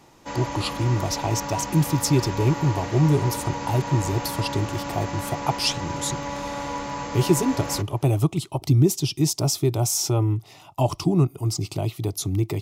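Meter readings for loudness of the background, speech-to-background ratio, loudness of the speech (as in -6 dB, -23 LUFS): -31.0 LUFS, 7.0 dB, -24.0 LUFS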